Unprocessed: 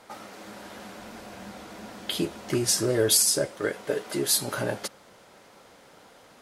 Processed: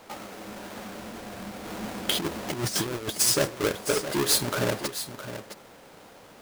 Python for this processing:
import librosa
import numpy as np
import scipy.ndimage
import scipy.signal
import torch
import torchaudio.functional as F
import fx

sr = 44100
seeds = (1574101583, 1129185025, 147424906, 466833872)

y = fx.halfwave_hold(x, sr)
y = fx.over_compress(y, sr, threshold_db=-25.0, ratio=-0.5, at=(1.64, 3.19), fade=0.02)
y = y + 10.0 ** (-11.0 / 20.0) * np.pad(y, (int(663 * sr / 1000.0), 0))[:len(y)]
y = y * 10.0 ** (-2.0 / 20.0)